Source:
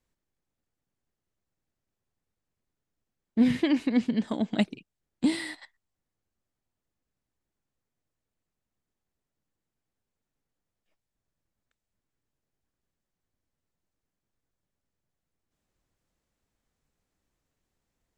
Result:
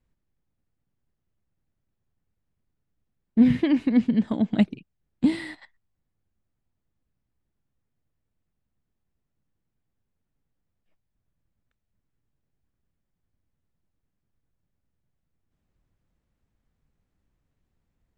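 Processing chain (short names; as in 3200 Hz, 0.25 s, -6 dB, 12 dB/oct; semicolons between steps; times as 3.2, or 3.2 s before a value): tone controls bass +9 dB, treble -9 dB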